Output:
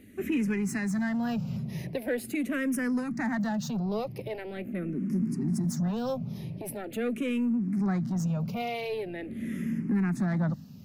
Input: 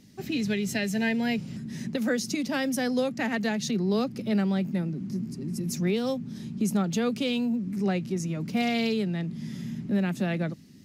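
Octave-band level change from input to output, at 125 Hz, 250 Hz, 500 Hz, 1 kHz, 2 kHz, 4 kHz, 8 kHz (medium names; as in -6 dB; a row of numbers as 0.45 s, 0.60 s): 0.0 dB, -1.5 dB, -4.0 dB, -2.5 dB, -4.0 dB, -10.5 dB, -5.5 dB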